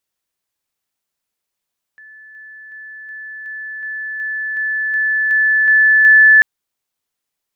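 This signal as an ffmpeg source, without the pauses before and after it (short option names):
-f lavfi -i "aevalsrc='pow(10,(-37.5+3*floor(t/0.37))/20)*sin(2*PI*1740*t)':d=4.44:s=44100"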